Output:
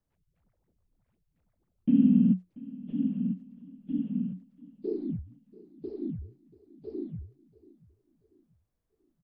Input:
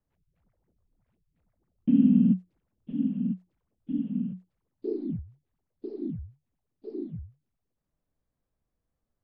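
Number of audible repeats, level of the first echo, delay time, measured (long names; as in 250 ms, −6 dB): 2, −21.0 dB, 685 ms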